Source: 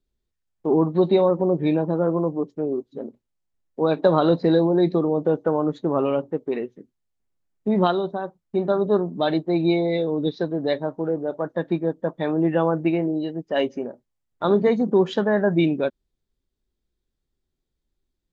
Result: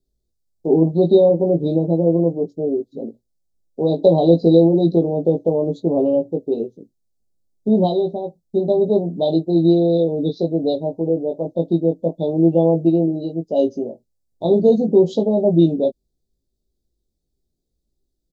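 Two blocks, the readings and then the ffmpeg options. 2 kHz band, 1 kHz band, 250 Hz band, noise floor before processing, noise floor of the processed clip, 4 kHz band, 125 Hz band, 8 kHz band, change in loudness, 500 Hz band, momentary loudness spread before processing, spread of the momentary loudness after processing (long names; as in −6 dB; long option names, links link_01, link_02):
below −30 dB, −2.5 dB, +5.0 dB, −79 dBFS, −75 dBFS, −1.0 dB, +6.0 dB, can't be measured, +4.5 dB, +5.0 dB, 10 LU, 11 LU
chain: -filter_complex "[0:a]asuperstop=centerf=1700:order=8:qfactor=0.53,asplit=2[link_01][link_02];[link_02]adelay=18,volume=-4dB[link_03];[link_01][link_03]amix=inputs=2:normalize=0,volume=3dB"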